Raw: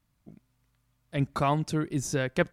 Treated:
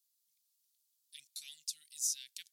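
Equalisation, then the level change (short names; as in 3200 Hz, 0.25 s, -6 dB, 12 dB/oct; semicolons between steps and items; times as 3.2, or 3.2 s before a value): inverse Chebyshev high-pass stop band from 1200 Hz, stop band 60 dB; high shelf 10000 Hz +7 dB; +1.0 dB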